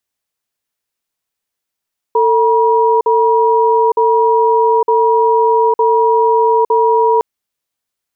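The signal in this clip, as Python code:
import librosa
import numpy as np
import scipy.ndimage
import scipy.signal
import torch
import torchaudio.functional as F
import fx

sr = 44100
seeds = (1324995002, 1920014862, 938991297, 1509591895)

y = fx.cadence(sr, length_s=5.06, low_hz=448.0, high_hz=958.0, on_s=0.86, off_s=0.05, level_db=-11.0)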